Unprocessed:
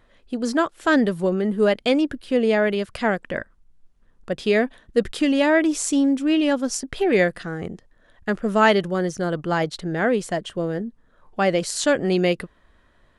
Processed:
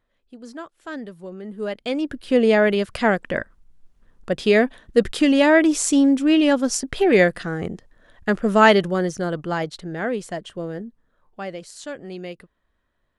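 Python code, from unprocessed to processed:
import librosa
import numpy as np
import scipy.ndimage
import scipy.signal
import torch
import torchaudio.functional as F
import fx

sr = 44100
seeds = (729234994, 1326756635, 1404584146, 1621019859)

y = fx.gain(x, sr, db=fx.line((1.25, -15.0), (1.97, -5.0), (2.29, 3.0), (8.73, 3.0), (9.87, -4.5), (10.8, -4.5), (11.67, -14.0)))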